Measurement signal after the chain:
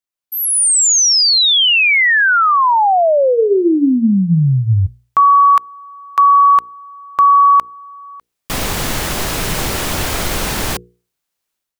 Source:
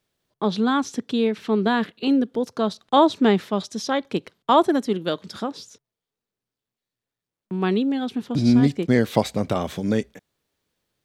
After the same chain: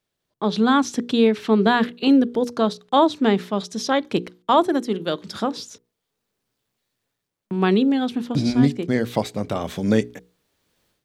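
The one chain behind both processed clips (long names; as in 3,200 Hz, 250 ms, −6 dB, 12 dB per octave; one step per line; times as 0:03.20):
automatic gain control gain up to 15 dB
mains-hum notches 60/120/180/240/300/360/420/480 Hz
level −4 dB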